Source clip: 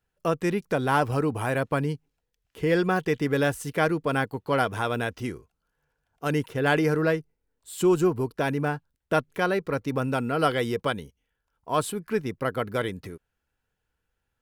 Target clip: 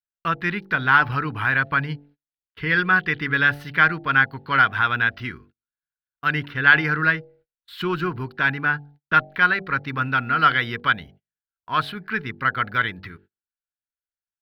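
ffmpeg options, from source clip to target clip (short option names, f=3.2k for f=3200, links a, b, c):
-af "bandreject=f=48.1:t=h:w=4,bandreject=f=96.2:t=h:w=4,bandreject=f=144.3:t=h:w=4,bandreject=f=192.4:t=h:w=4,bandreject=f=240.5:t=h:w=4,bandreject=f=288.6:t=h:w=4,bandreject=f=336.7:t=h:w=4,bandreject=f=384.8:t=h:w=4,bandreject=f=432.9:t=h:w=4,bandreject=f=481:t=h:w=4,bandreject=f=529.1:t=h:w=4,bandreject=f=577.2:t=h:w=4,bandreject=f=625.3:t=h:w=4,bandreject=f=673.4:t=h:w=4,bandreject=f=721.5:t=h:w=4,bandreject=f=769.6:t=h:w=4,bandreject=f=817.7:t=h:w=4,bandreject=f=865.8:t=h:w=4,agate=range=-33dB:threshold=-49dB:ratio=16:detection=peak,firequalizer=gain_entry='entry(140,0);entry(530,-13);entry(1000,2);entry(1500,13);entry(2500,6);entry(4200,5);entry(7300,-26);entry(14000,-8)':delay=0.05:min_phase=1,volume=1.5dB"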